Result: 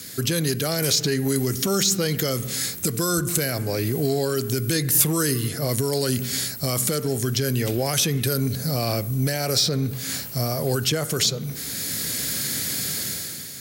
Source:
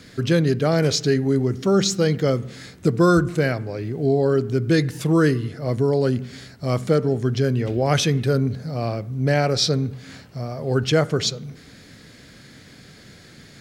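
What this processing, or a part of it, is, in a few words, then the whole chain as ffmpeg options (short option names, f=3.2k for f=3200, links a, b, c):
FM broadcast chain: -filter_complex "[0:a]highpass=62,dynaudnorm=f=130:g=9:m=11.5dB,acrossover=split=1300|3400[a][b][c];[a]acompressor=threshold=-19dB:ratio=4[d];[b]acompressor=threshold=-32dB:ratio=4[e];[c]acompressor=threshold=-36dB:ratio=4[f];[d][e][f]amix=inputs=3:normalize=0,aemphasis=mode=production:type=50fm,alimiter=limit=-14.5dB:level=0:latency=1:release=25,asoftclip=type=hard:threshold=-15.5dB,lowpass=f=15k:w=0.5412,lowpass=f=15k:w=1.3066,aemphasis=mode=production:type=50fm"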